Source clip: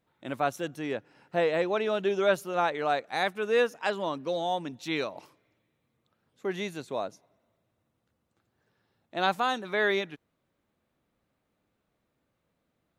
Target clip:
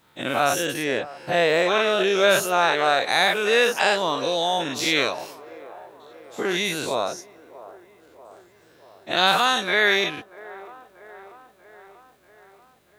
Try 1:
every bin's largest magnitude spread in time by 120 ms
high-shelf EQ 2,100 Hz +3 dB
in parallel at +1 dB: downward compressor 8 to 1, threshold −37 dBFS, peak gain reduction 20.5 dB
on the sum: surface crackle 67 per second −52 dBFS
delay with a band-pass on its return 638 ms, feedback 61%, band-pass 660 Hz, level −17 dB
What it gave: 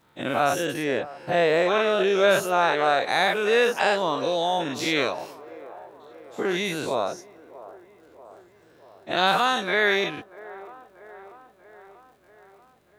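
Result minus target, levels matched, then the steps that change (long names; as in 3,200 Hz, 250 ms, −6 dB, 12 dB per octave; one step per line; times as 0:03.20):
4,000 Hz band −3.5 dB
change: high-shelf EQ 2,100 Hz +10.5 dB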